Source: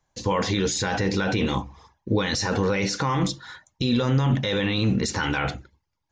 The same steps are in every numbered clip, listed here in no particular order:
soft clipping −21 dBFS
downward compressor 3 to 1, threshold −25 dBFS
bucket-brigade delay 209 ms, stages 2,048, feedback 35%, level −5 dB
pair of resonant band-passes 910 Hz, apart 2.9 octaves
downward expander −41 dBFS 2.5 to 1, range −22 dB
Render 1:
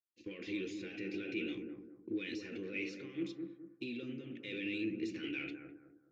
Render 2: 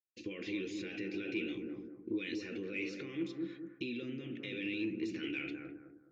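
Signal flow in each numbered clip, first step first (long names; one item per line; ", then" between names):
downward compressor, then soft clipping, then pair of resonant band-passes, then downward expander, then bucket-brigade delay
downward expander, then bucket-brigade delay, then downward compressor, then pair of resonant band-passes, then soft clipping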